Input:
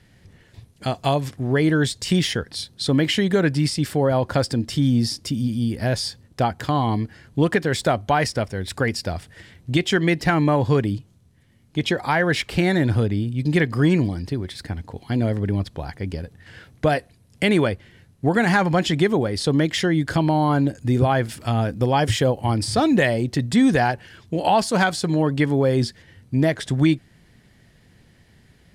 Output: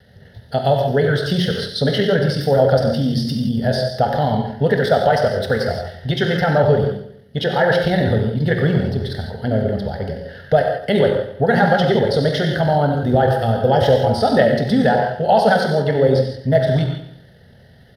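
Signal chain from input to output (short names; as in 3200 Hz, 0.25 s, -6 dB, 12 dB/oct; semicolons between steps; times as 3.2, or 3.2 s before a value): HPF 65 Hz 6 dB/oct; bell 370 Hz +10.5 dB 1.7 oct; fixed phaser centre 1600 Hz, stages 8; in parallel at -3 dB: compressor 4:1, threshold -34 dBFS, peak gain reduction 19.5 dB; on the sum: bell 8900 Hz -2 dB 0.96 oct; non-linear reverb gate 0.3 s flat, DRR 2 dB; flange 1.7 Hz, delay 8.4 ms, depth 4.9 ms, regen -88%; vibrato 0.32 Hz 7.6 cents; on a send: feedback echo 0.147 s, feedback 45%, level -12 dB; on the sum: tempo 1.6×; gain +5 dB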